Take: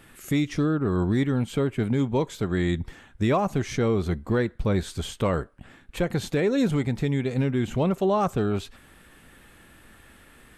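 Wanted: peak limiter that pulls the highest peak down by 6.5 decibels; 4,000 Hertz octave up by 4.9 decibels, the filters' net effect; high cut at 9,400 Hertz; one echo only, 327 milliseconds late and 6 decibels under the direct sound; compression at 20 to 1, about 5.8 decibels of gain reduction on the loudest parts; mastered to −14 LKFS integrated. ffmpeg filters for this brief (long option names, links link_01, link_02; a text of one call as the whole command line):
ffmpeg -i in.wav -af "lowpass=9400,equalizer=frequency=4000:width_type=o:gain=6,acompressor=threshold=-24dB:ratio=20,alimiter=limit=-22dB:level=0:latency=1,aecho=1:1:327:0.501,volume=17.5dB" out.wav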